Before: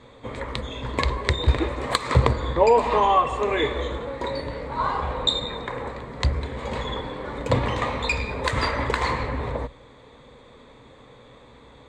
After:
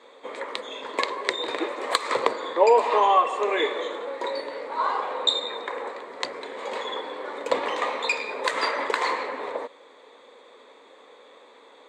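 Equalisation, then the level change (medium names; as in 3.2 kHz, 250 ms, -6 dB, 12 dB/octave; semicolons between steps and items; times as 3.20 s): high-pass 350 Hz 24 dB/octave; 0.0 dB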